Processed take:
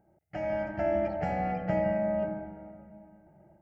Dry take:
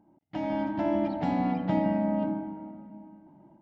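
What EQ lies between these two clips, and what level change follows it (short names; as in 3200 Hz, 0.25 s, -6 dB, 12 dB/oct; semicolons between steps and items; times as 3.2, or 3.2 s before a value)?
bell 71 Hz +12 dB 0.21 oct; fixed phaser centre 1000 Hz, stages 6; +3.5 dB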